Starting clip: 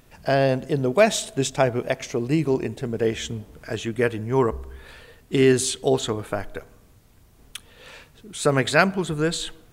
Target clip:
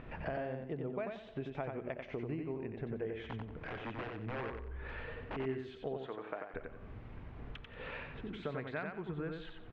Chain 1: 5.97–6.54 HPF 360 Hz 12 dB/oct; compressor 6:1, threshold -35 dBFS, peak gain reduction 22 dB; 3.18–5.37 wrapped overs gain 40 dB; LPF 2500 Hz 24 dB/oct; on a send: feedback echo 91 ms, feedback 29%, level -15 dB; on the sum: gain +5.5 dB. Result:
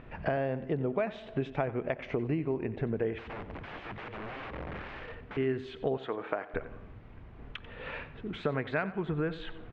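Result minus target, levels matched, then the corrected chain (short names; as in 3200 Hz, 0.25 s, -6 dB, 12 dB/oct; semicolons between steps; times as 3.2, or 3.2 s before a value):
compressor: peak gain reduction -9 dB; echo-to-direct -10.5 dB
5.97–6.54 HPF 360 Hz 12 dB/oct; compressor 6:1, threshold -46 dBFS, peak gain reduction 31 dB; 3.18–5.37 wrapped overs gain 40 dB; LPF 2500 Hz 24 dB/oct; on a send: feedback echo 91 ms, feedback 29%, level -4.5 dB; on the sum: gain +5.5 dB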